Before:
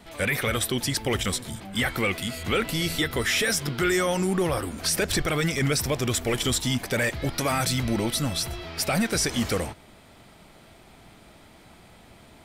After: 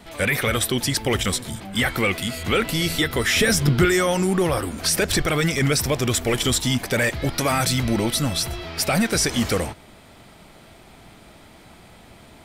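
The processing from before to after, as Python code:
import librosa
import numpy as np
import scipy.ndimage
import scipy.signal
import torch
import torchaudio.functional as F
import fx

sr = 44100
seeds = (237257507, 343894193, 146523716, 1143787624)

y = fx.low_shelf(x, sr, hz=260.0, db=11.5, at=(3.36, 3.85))
y = y * 10.0 ** (4.0 / 20.0)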